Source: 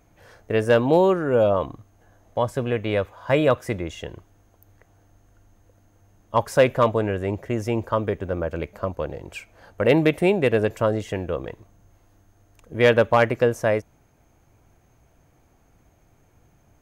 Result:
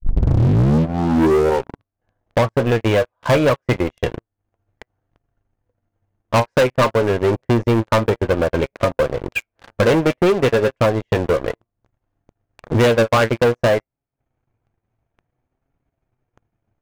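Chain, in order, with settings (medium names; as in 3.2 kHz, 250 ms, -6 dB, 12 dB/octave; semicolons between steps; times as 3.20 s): tape start-up on the opening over 1.89 s; low-pass 2.8 kHz 12 dB/octave; in parallel at +2.5 dB: compression 12:1, threshold -27 dBFS, peak gain reduction 16.5 dB; on the sum: transient shaper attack +8 dB, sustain -12 dB; flange 0.57 Hz, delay 7.1 ms, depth 2.1 ms, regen +62%; waveshaping leveller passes 5; trim -8.5 dB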